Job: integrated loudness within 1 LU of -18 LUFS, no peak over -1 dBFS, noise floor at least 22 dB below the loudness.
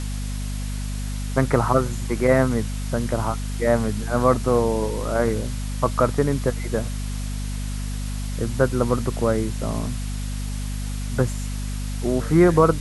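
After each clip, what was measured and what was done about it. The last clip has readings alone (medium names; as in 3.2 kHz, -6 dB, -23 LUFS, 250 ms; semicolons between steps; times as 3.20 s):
hum 50 Hz; highest harmonic 250 Hz; hum level -25 dBFS; noise floor -28 dBFS; noise floor target -46 dBFS; loudness -23.5 LUFS; peak level -3.0 dBFS; loudness target -18.0 LUFS
-> hum notches 50/100/150/200/250 Hz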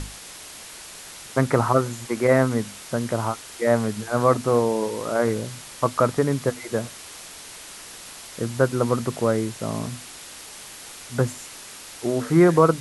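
hum not found; noise floor -41 dBFS; noise floor target -45 dBFS
-> noise reduction 6 dB, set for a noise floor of -41 dBFS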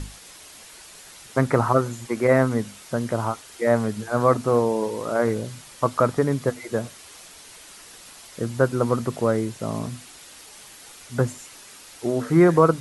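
noise floor -46 dBFS; loudness -23.0 LUFS; peak level -3.0 dBFS; loudness target -18.0 LUFS
-> trim +5 dB; peak limiter -1 dBFS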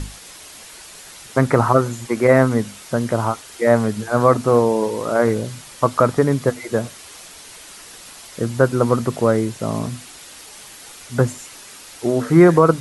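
loudness -18.5 LUFS; peak level -1.0 dBFS; noise floor -41 dBFS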